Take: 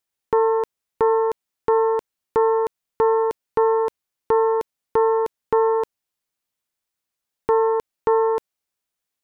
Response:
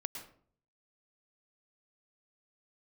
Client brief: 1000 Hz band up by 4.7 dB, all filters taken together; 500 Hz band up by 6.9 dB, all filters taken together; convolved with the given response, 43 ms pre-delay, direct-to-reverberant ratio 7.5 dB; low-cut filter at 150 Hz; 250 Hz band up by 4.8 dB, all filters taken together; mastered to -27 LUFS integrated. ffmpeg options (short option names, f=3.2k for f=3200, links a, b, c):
-filter_complex "[0:a]highpass=150,equalizer=f=250:t=o:g=4,equalizer=f=500:t=o:g=6,equalizer=f=1k:t=o:g=3.5,asplit=2[a][b];[1:a]atrim=start_sample=2205,adelay=43[c];[b][c]afir=irnorm=-1:irlink=0,volume=-7dB[d];[a][d]amix=inputs=2:normalize=0,volume=-12dB"